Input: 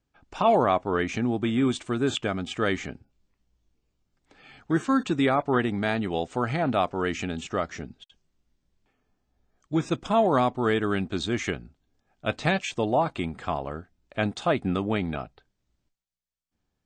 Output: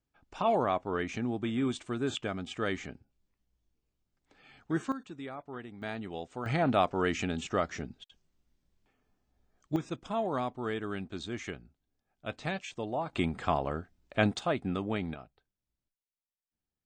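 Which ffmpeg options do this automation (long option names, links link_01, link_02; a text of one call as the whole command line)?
ffmpeg -i in.wav -af "asetnsamples=nb_out_samples=441:pad=0,asendcmd='4.92 volume volume -19dB;5.82 volume volume -11.5dB;6.46 volume volume -2dB;9.76 volume volume -10.5dB;13.13 volume volume 0dB;14.39 volume volume -6.5dB;15.14 volume volume -14dB',volume=-7dB" out.wav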